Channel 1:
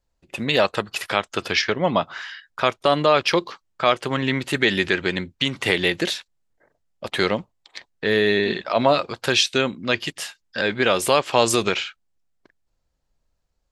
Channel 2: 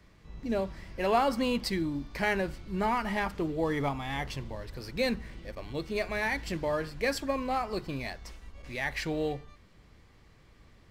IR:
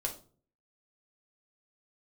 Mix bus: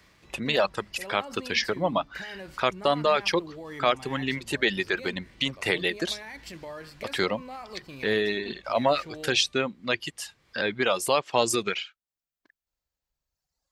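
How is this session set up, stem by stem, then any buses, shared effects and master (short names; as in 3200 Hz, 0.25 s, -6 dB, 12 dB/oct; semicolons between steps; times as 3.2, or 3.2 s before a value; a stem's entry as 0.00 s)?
-4.5 dB, 0.00 s, no send, reverb removal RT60 1.7 s
-1.5 dB, 0.00 s, no send, limiter -26 dBFS, peak gain reduction 10.5 dB; auto duck -6 dB, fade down 0.45 s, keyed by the first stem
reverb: off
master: HPF 75 Hz 6 dB/oct; mismatched tape noise reduction encoder only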